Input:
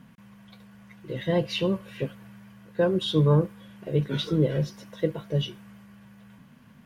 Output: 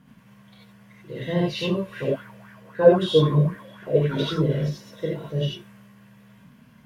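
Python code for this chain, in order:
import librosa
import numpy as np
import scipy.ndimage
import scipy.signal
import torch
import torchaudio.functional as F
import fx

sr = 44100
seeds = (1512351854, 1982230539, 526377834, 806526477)

y = fx.spec_repair(x, sr, seeds[0], start_s=3.25, length_s=0.33, low_hz=230.0, high_hz=2700.0, source='both')
y = fx.rev_gated(y, sr, seeds[1], gate_ms=110, shape='rising', drr_db=-4.5)
y = fx.bell_lfo(y, sr, hz=3.8, low_hz=490.0, high_hz=1700.0, db=16, at=(1.91, 4.42), fade=0.02)
y = y * librosa.db_to_amplitude(-4.5)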